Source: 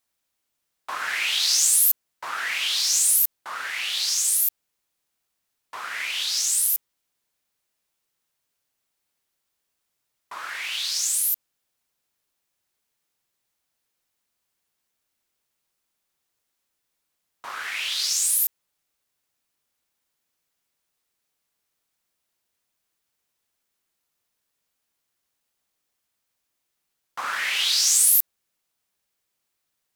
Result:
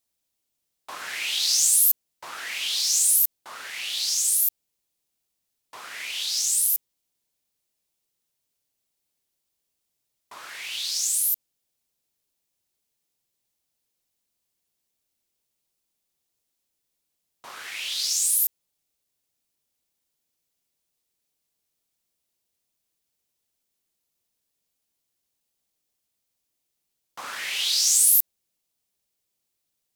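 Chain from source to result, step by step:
parametric band 1,400 Hz −9 dB 1.7 octaves

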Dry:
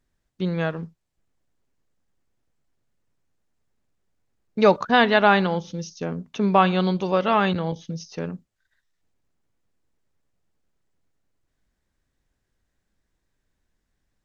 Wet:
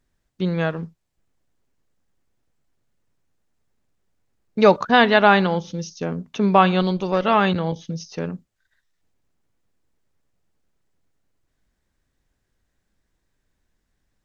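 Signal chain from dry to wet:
0:06.82–0:07.25: tube saturation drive 12 dB, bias 0.5
level +2.5 dB

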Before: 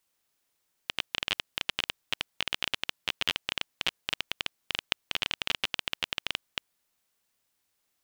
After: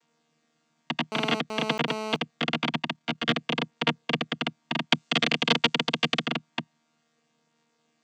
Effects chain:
channel vocoder with a chord as carrier bare fifth, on D#3
0:01.12–0:02.16: phone interference −39 dBFS
0:02.70–0:03.28: amplitude modulation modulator 35 Hz, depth 30%
0:04.91–0:06.26: high-shelf EQ 3,200 Hz +11 dB
level +6.5 dB

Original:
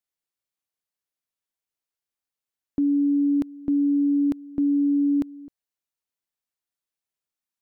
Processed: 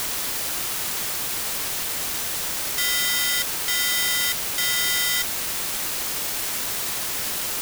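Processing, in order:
wrap-around overflow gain 23.5 dB
inverse Chebyshev band-stop filter 210–630 Hz, stop band 70 dB
bit-depth reduction 6 bits, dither triangular
level +9 dB

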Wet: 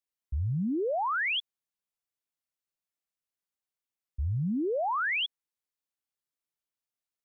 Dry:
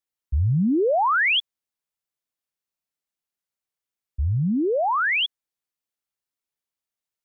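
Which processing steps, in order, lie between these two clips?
brickwall limiter −21 dBFS, peak gain reduction 4 dB
floating-point word with a short mantissa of 8 bits
level −5 dB

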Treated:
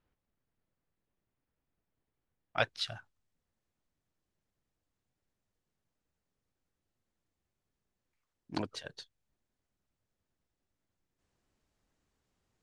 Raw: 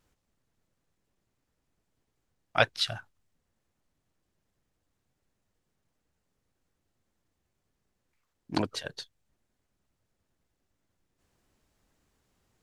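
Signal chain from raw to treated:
low-pass filter 3,100 Hz 12 dB per octave, from 0:02.58 9,100 Hz
level −7 dB

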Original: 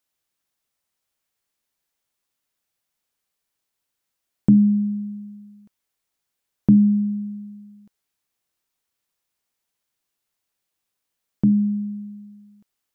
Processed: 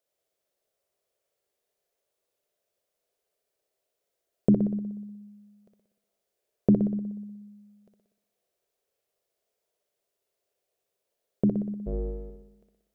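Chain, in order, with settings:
0:11.86–0:12.30: sub-octave generator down 2 octaves, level +4 dB
flat-topped bell 510 Hz +15.5 dB 1.1 octaves
flutter between parallel walls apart 10.4 metres, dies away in 0.8 s
level −6 dB

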